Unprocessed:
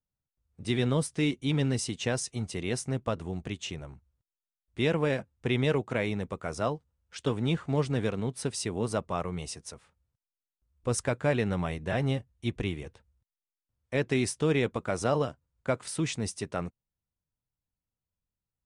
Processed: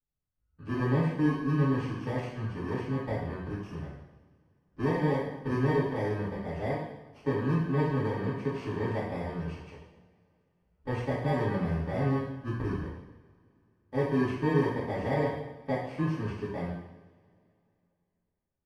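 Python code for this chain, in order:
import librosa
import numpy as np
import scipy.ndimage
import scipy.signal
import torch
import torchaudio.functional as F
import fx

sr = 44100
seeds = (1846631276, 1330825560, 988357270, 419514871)

y = fx.bit_reversed(x, sr, seeds[0], block=32)
y = scipy.signal.sosfilt(scipy.signal.butter(2, 1700.0, 'lowpass', fs=sr, output='sos'), y)
y = fx.rev_double_slope(y, sr, seeds[1], early_s=0.85, late_s=2.9, knee_db=-22, drr_db=-9.0)
y = F.gain(torch.from_numpy(y), -7.5).numpy()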